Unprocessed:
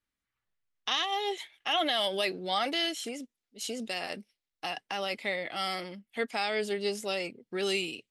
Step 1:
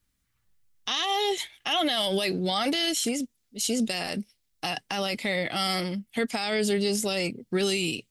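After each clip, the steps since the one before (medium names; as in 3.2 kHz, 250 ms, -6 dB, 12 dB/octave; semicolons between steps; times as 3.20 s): tone controls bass +12 dB, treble +8 dB; peak limiter -23 dBFS, peak gain reduction 9 dB; trim +6 dB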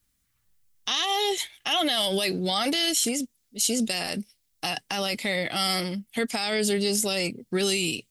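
treble shelf 5.1 kHz +7 dB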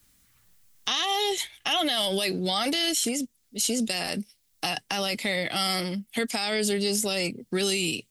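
three bands compressed up and down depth 40%; trim -1 dB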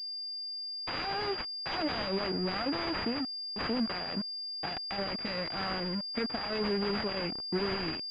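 self-modulated delay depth 0.38 ms; small samples zeroed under -33.5 dBFS; class-D stage that switches slowly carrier 4.8 kHz; trim -3.5 dB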